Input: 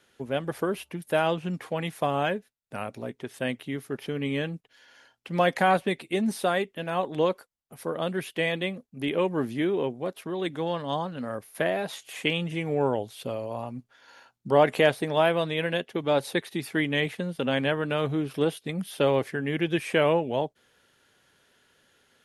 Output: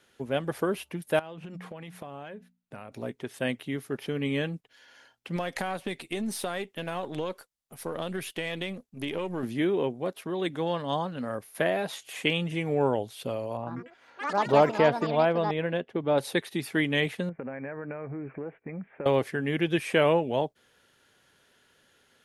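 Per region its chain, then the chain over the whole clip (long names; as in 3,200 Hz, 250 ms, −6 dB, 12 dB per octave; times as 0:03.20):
0:01.19–0:02.92: bass and treble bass +1 dB, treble −6 dB + mains-hum notches 60/120/180/240 Hz + downward compressor 10 to 1, threshold −37 dBFS
0:05.36–0:09.43: gain on one half-wave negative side −3 dB + parametric band 8,100 Hz +4.5 dB 2.5 octaves + downward compressor 5 to 1, threshold −27 dBFS
0:13.57–0:16.18: low-pass filter 1,200 Hz 6 dB per octave + delay with pitch and tempo change per echo 96 ms, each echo +6 semitones, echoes 3, each echo −6 dB
0:17.29–0:19.06: downward compressor 12 to 1, threshold −30 dBFS + Chebyshev low-pass with heavy ripple 2,400 Hz, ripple 3 dB
whole clip: no processing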